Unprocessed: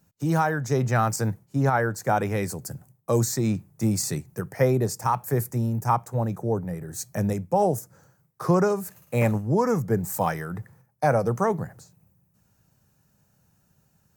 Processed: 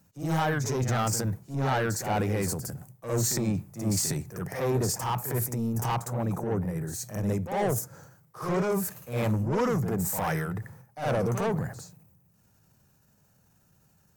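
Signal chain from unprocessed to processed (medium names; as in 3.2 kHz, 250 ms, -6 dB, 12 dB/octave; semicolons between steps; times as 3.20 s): saturation -22.5 dBFS, distortion -10 dB; transient shaper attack -6 dB, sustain +6 dB; reverse echo 57 ms -7 dB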